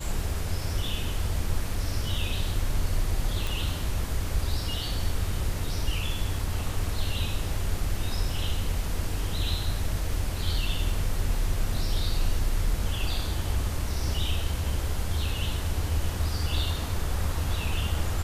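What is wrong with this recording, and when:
3.47 s: pop

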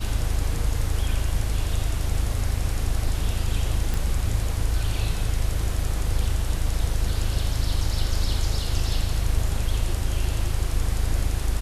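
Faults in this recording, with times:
3.94 s: pop

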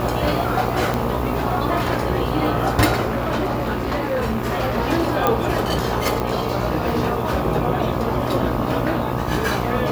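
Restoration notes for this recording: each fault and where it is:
buzz 60 Hz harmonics 21 -26 dBFS
0.94 s: pop
3.07–4.78 s: clipped -17 dBFS
5.27 s: pop -4 dBFS
6.20 s: pop

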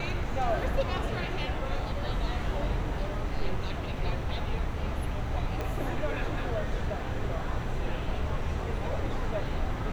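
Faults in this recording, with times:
5.61 s: pop -20 dBFS

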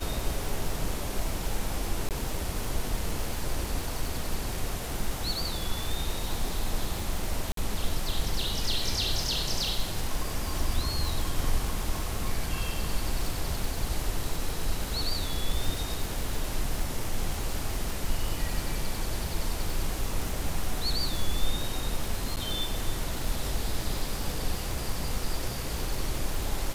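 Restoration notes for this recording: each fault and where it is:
crackle 150 per s -31 dBFS
2.09–2.11 s: dropout 18 ms
7.52–7.57 s: dropout 53 ms
22.36–22.37 s: dropout 9.2 ms

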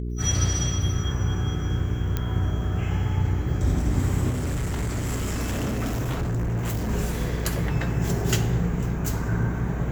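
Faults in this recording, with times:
hum 60 Hz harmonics 7 -29 dBFS
2.17 s: pop -12 dBFS
4.29–6.90 s: clipped -23 dBFS

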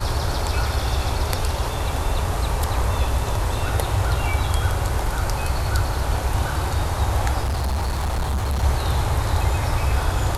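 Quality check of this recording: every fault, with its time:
7.43–8.64 s: clipped -19.5 dBFS

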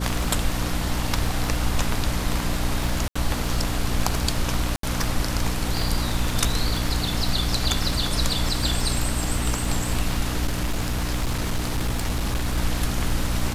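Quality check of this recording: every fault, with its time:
crackle 50 per s -28 dBFS
hum 60 Hz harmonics 5 -28 dBFS
3.08–3.15 s: dropout 75 ms
4.76–4.83 s: dropout 73 ms
10.46–12.58 s: clipped -19.5 dBFS

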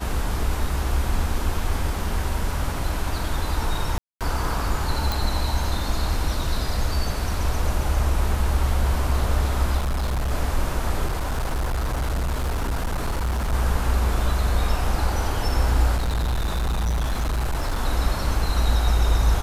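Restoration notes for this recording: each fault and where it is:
3.98–4.21 s: dropout 227 ms
5.12 s: pop
9.77–10.32 s: clipped -20.5 dBFS
11.06–13.54 s: clipped -20.5 dBFS
15.96–17.79 s: clipped -20 dBFS

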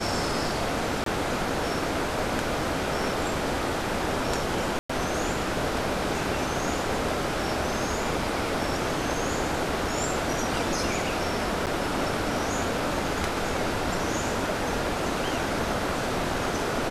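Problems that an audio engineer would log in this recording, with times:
1.04–1.06 s: dropout 23 ms
4.79–4.89 s: dropout 105 ms
11.66–11.67 s: dropout 8.2 ms

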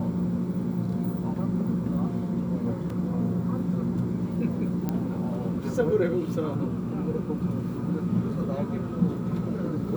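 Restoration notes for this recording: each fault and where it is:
2.90 s: dropout 3.1 ms
4.89 s: pop -16 dBFS

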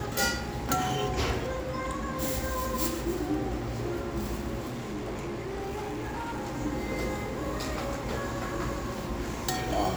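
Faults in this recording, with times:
4.67–6.56 s: clipped -31.5 dBFS

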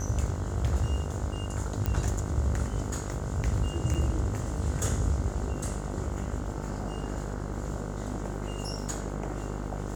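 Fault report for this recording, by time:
buzz 50 Hz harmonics 31 -35 dBFS
1.86 s: pop -15 dBFS
3.94–3.95 s: dropout 6.5 ms

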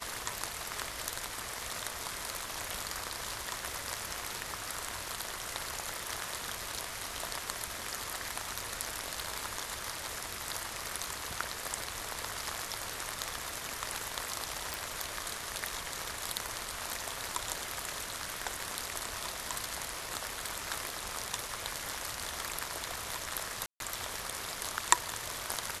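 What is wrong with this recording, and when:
14.74 s: pop
23.66–23.80 s: dropout 142 ms

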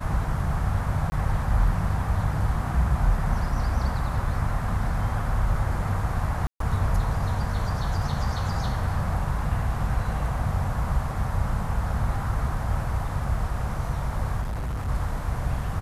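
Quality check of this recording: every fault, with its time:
1.10–1.12 s: dropout 20 ms
6.47–6.60 s: dropout 133 ms
14.41–14.89 s: clipped -26 dBFS

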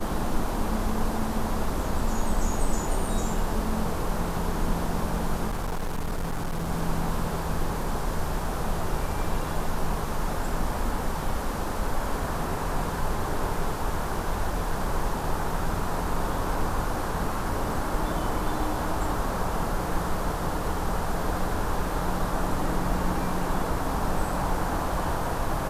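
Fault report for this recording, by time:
5.47–6.70 s: clipped -25 dBFS

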